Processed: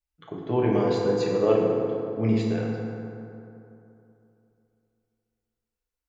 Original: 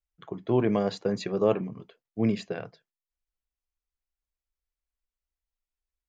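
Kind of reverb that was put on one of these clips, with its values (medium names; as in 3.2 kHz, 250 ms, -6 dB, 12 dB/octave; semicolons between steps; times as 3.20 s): FDN reverb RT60 2.9 s, high-frequency decay 0.45×, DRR -3.5 dB; trim -2 dB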